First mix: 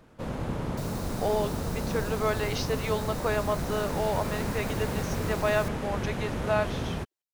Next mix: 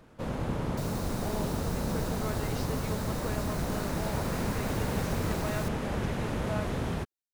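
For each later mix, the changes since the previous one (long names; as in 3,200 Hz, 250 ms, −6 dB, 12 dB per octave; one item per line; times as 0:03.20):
speech −11.5 dB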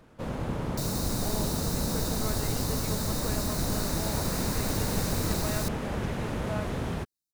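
second sound +9.5 dB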